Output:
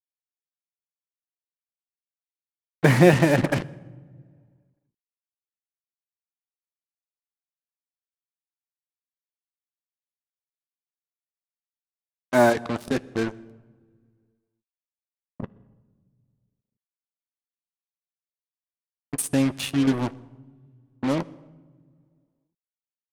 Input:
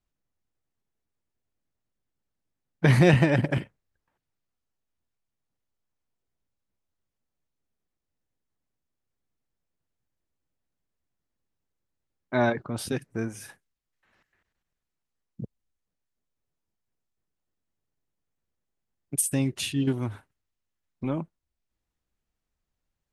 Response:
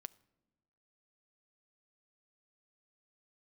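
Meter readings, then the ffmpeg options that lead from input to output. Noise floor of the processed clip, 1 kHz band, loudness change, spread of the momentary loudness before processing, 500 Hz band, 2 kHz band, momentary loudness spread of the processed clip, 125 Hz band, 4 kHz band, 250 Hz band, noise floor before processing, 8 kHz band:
under -85 dBFS, +6.0 dB, +3.0 dB, 24 LU, +5.5 dB, +3.5 dB, 23 LU, 0.0 dB, +2.0 dB, +4.0 dB, -85 dBFS, -1.5 dB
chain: -filter_complex "[0:a]highpass=f=260:p=1,highshelf=f=2800:g=-12,bandreject=f=390:w=12,alimiter=limit=0.299:level=0:latency=1:release=476,acrusher=bits=5:mix=0:aa=0.5,asplit=2[s0][s1];[1:a]atrim=start_sample=2205,asetrate=24255,aresample=44100[s2];[s1][s2]afir=irnorm=-1:irlink=0,volume=10[s3];[s0][s3]amix=inputs=2:normalize=0,volume=0.299"

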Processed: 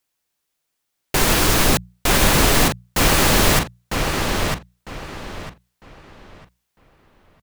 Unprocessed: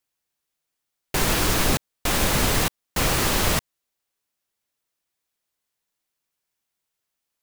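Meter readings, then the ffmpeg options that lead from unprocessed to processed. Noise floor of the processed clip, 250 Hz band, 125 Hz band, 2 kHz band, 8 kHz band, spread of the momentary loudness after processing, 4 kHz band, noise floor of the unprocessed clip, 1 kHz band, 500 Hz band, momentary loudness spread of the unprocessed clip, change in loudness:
-77 dBFS, +6.5 dB, +6.0 dB, +6.5 dB, +5.5 dB, 19 LU, +6.0 dB, -82 dBFS, +6.5 dB, +6.5 dB, 5 LU, +5.0 dB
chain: -filter_complex "[0:a]bandreject=f=60:t=h:w=6,bandreject=f=120:t=h:w=6,bandreject=f=180:t=h:w=6,asplit=2[s0][s1];[s1]adelay=952,lowpass=f=4200:p=1,volume=0.668,asplit=2[s2][s3];[s3]adelay=952,lowpass=f=4200:p=1,volume=0.28,asplit=2[s4][s5];[s5]adelay=952,lowpass=f=4200:p=1,volume=0.28,asplit=2[s6][s7];[s7]adelay=952,lowpass=f=4200:p=1,volume=0.28[s8];[s2][s4][s6][s8]amix=inputs=4:normalize=0[s9];[s0][s9]amix=inputs=2:normalize=0,volume=1.78"

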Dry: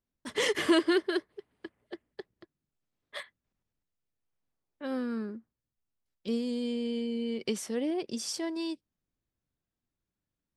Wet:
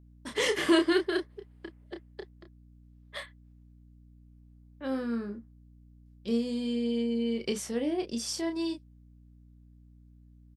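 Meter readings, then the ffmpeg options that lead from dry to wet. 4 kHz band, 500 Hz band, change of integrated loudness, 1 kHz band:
+1.0 dB, +1.0 dB, +1.0 dB, +1.0 dB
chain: -filter_complex "[0:a]asplit=2[s0][s1];[s1]adelay=30,volume=0.501[s2];[s0][s2]amix=inputs=2:normalize=0,aeval=exprs='val(0)+0.002*(sin(2*PI*60*n/s)+sin(2*PI*2*60*n/s)/2+sin(2*PI*3*60*n/s)/3+sin(2*PI*4*60*n/s)/4+sin(2*PI*5*60*n/s)/5)':c=same"

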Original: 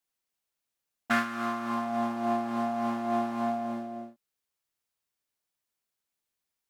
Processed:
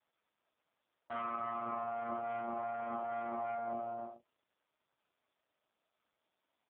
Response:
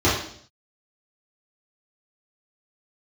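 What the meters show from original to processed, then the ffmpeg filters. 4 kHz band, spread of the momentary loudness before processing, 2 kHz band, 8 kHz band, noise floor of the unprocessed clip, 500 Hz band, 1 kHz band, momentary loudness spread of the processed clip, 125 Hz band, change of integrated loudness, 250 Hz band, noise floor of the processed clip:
under -15 dB, 8 LU, -15.5 dB, no reading, under -85 dBFS, -6.0 dB, -6.5 dB, 4 LU, -14.0 dB, -9.0 dB, -18.5 dB, under -85 dBFS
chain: -filter_complex "[0:a]highpass=230,equalizer=f=240:t=q:w=4:g=-3,equalizer=f=410:t=q:w=4:g=-6,equalizer=f=650:t=q:w=4:g=7,equalizer=f=1300:t=q:w=4:g=3,equalizer=f=1800:t=q:w=4:g=-10,equalizer=f=2600:t=q:w=4:g=-9,lowpass=f=2900:w=0.5412,lowpass=f=2900:w=1.3066,aecho=1:1:3.2:0.93,aeval=exprs='(tanh(14.1*val(0)+0.5)-tanh(0.5))/14.1':c=same,alimiter=level_in=2.24:limit=0.0631:level=0:latency=1:release=10,volume=0.447,asplit=2[s0][s1];[s1]aecho=0:1:42|53|75:0.596|0.422|0.237[s2];[s0][s2]amix=inputs=2:normalize=0" -ar 8000 -c:a libopencore_amrnb -b:a 4750

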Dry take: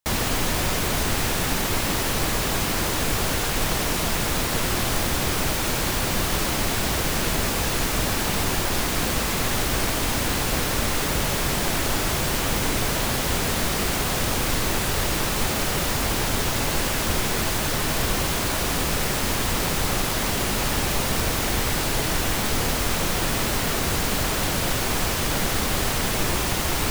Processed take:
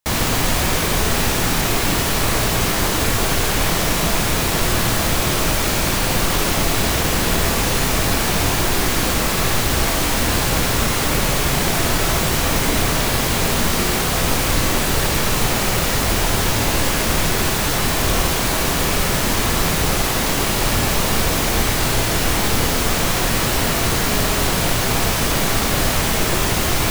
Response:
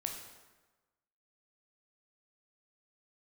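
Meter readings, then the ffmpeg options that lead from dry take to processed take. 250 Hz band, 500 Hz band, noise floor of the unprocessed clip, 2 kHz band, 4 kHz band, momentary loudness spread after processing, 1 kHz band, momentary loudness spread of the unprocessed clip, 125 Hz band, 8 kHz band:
+5.5 dB, +5.5 dB, -25 dBFS, +5.0 dB, +5.0 dB, 0 LU, +5.5 dB, 0 LU, +6.0 dB, +5.0 dB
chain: -filter_complex "[1:a]atrim=start_sample=2205[s0];[0:a][s0]afir=irnorm=-1:irlink=0,volume=1.78"

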